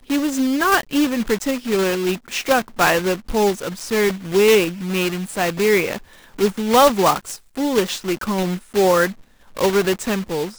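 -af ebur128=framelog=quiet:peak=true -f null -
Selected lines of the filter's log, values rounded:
Integrated loudness:
  I:         -19.0 LUFS
  Threshold: -29.2 LUFS
Loudness range:
  LRA:         2.0 LU
  Threshold: -39.1 LUFS
  LRA low:   -20.0 LUFS
  LRA high:  -18.0 LUFS
True peak:
  Peak:       -1.4 dBFS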